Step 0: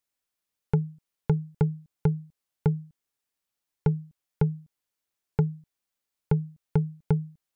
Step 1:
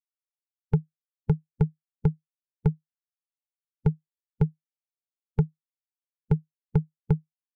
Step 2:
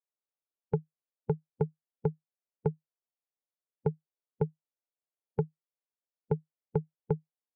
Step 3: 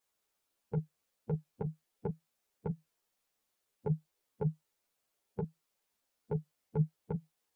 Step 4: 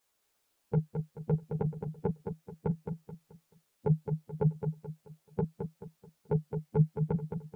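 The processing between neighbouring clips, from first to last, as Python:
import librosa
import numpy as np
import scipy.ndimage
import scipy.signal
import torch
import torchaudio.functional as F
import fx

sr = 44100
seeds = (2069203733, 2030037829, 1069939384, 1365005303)

y1 = fx.bin_expand(x, sr, power=3.0)
y1 = fx.low_shelf(y1, sr, hz=120.0, db=9.5)
y2 = fx.bandpass_q(y1, sr, hz=540.0, q=1.3)
y2 = F.gain(torch.from_numpy(y2), 4.0).numpy()
y3 = fx.over_compress(y2, sr, threshold_db=-35.0, ratio=-1.0)
y3 = fx.ensemble(y3, sr)
y3 = F.gain(torch.from_numpy(y3), 9.5).numpy()
y4 = fx.echo_feedback(y3, sr, ms=216, feedback_pct=36, wet_db=-6.5)
y4 = F.gain(torch.from_numpy(y4), 5.5).numpy()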